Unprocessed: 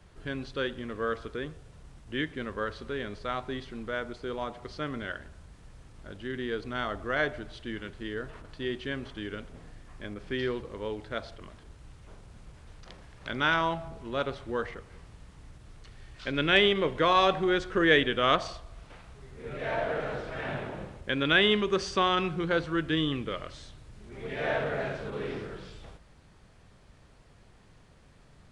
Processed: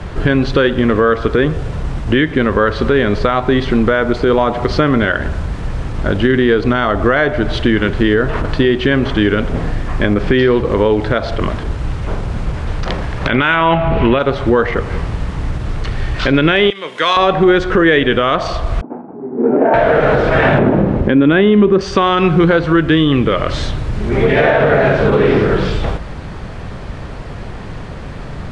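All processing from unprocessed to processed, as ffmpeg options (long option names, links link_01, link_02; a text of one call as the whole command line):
ffmpeg -i in.wav -filter_complex "[0:a]asettb=1/sr,asplit=3[link_01][link_02][link_03];[link_01]atrim=end=13.294[link_04];[link_02]atrim=start=13.29:end=14.19,asetpts=PTS-STARTPTS,afade=type=in:duration=0.004:curve=qsin,afade=type=out:start_time=0.896:duration=0.004:curve=qsin,lowpass=frequency=2700:width_type=q:width=2.8,acontrast=30[link_05];[link_03]atrim=start=14.186[link_06];[link_04][link_05]acrossfade=duration=0.004:curve1=hsin:curve2=qsin[link_07];[link_07][link_06]acrossfade=duration=0.004:curve1=qsin:curve2=hsin,asettb=1/sr,asplit=3[link_08][link_09][link_10];[link_08]atrim=end=16.704[link_11];[link_09]atrim=start=16.7:end=17.17,asetpts=PTS-STARTPTS,afade=type=in:duration=0.004:curve=qsin,afade=type=out:start_time=0.466:duration=0.004:curve=qsin,highpass=frequency=160:width_type=q:width=1.9,aderivative[link_12];[link_10]atrim=start=17.166[link_13];[link_11][link_12]acrossfade=duration=0.004:curve1=hsin:curve2=qsin[link_14];[link_14][link_13]acrossfade=duration=0.004:curve1=qsin:curve2=hsin,asettb=1/sr,asplit=3[link_15][link_16][link_17];[link_15]atrim=end=18.814[link_18];[link_16]atrim=start=18.81:end=19.74,asetpts=PTS-STARTPTS,afade=type=in:duration=0.004:curve=qsin,afade=type=out:start_time=0.926:duration=0.004:curve=qsin,agate=range=-33dB:threshold=-48dB:ratio=3:release=100:detection=peak,adynamicsmooth=sensitivity=2:basefreq=520,highpass=frequency=240:width=0.5412,highpass=frequency=240:width=1.3066,equalizer=frequency=240:width_type=q:width=4:gain=10,equalizer=frequency=340:width_type=q:width=4:gain=5,equalizer=frequency=550:width_type=q:width=4:gain=-5,equalizer=frequency=820:width_type=q:width=4:gain=7,equalizer=frequency=1200:width_type=q:width=4:gain=-5,equalizer=frequency=1900:width_type=q:width=4:gain=-8,lowpass=frequency=2000:width=0.5412,lowpass=frequency=2000:width=1.3066[link_19];[link_17]atrim=start=19.736[link_20];[link_18][link_19]acrossfade=duration=0.004:curve1=hsin:curve2=qsin[link_21];[link_21][link_20]acrossfade=duration=0.004:curve1=qsin:curve2=hsin,asettb=1/sr,asplit=3[link_22][link_23][link_24];[link_22]atrim=end=20.584[link_25];[link_23]atrim=start=20.58:end=21.81,asetpts=PTS-STARTPTS,afade=type=in:duration=0.004:curve=qsin,afade=type=out:start_time=1.226:duration=0.004:curve=qsin,lowpass=frequency=1900:poles=1,equalizer=frequency=250:width=0.85:gain=10.5[link_26];[link_24]atrim=start=21.806[link_27];[link_25][link_26]acrossfade=duration=0.004:curve1=hsin:curve2=qsin[link_28];[link_28][link_27]acrossfade=duration=0.004:curve1=qsin:curve2=hsin,aemphasis=mode=reproduction:type=75fm,acompressor=threshold=-38dB:ratio=4,alimiter=level_in=30.5dB:limit=-1dB:release=50:level=0:latency=1,volume=-1dB" out.wav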